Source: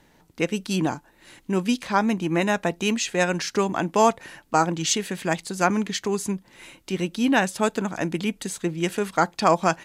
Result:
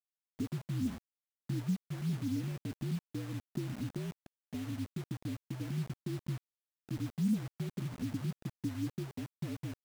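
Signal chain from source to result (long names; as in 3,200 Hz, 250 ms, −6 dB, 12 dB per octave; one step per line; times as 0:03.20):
downward compressor 2 to 1, threshold −28 dBFS, peak gain reduction 9 dB
frequency shifter −60 Hz
transistor ladder low-pass 290 Hz, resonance 45%
bit reduction 8 bits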